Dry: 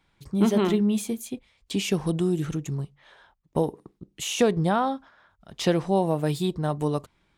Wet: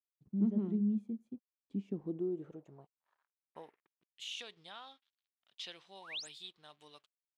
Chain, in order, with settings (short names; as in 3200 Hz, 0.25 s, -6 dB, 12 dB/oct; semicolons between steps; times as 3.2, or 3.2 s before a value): painted sound rise, 6.01–6.29, 780–9900 Hz -29 dBFS; crossover distortion -51 dBFS; band-pass sweep 210 Hz -> 3400 Hz, 1.76–4.12; gain -8.5 dB